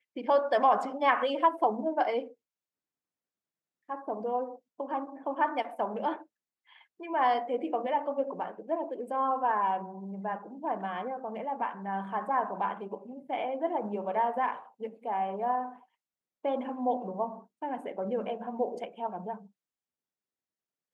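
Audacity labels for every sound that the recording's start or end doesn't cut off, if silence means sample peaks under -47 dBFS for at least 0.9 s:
3.890000	19.460000	sound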